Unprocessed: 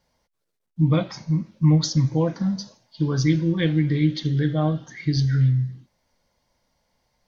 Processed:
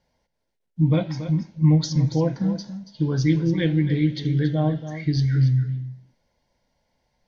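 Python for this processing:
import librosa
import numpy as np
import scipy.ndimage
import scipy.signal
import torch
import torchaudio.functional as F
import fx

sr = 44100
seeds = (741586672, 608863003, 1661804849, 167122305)

y = fx.lowpass(x, sr, hz=3900.0, slope=6)
y = fx.peak_eq(y, sr, hz=1200.0, db=-14.5, octaves=0.2)
y = y + 10.0 ** (-11.5 / 20.0) * np.pad(y, (int(280 * sr / 1000.0), 0))[:len(y)]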